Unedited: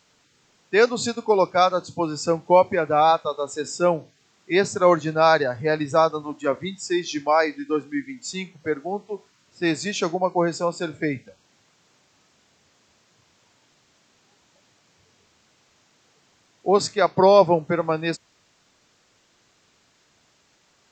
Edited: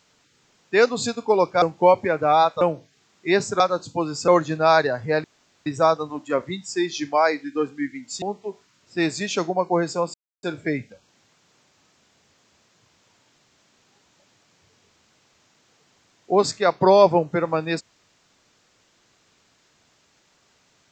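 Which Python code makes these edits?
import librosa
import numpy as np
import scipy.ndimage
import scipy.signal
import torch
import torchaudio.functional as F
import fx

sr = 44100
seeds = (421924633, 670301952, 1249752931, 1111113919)

y = fx.edit(x, sr, fx.move(start_s=1.62, length_s=0.68, to_s=4.84),
    fx.cut(start_s=3.29, length_s=0.56),
    fx.insert_room_tone(at_s=5.8, length_s=0.42),
    fx.cut(start_s=8.36, length_s=0.51),
    fx.insert_silence(at_s=10.79, length_s=0.29), tone=tone)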